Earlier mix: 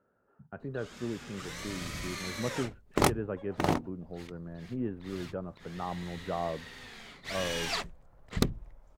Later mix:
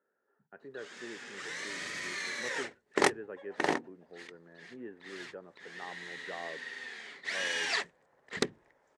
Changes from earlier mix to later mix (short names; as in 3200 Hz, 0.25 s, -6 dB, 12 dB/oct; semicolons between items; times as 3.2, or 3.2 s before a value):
speech -7.0 dB; master: add speaker cabinet 340–9200 Hz, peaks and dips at 410 Hz +4 dB, 650 Hz -4 dB, 1200 Hz -4 dB, 1800 Hz +10 dB